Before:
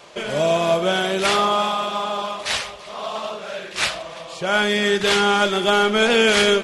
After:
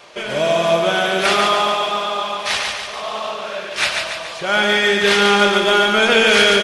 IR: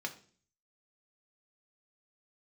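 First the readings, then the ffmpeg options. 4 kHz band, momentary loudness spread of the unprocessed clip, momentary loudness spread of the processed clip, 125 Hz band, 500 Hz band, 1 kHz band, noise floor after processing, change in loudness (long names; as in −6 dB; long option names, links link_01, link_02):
+4.5 dB, 14 LU, 13 LU, +0.5 dB, +2.5 dB, +3.0 dB, −30 dBFS, +3.5 dB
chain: -filter_complex "[0:a]aecho=1:1:143|286|429|572|715|858|1001:0.631|0.341|0.184|0.0994|0.0537|0.029|0.0156,asplit=2[link_01][link_02];[1:a]atrim=start_sample=2205,lowshelf=frequency=360:gain=-10.5[link_03];[link_02][link_03]afir=irnorm=-1:irlink=0,volume=-2dB[link_04];[link_01][link_04]amix=inputs=2:normalize=0,volume=-2dB"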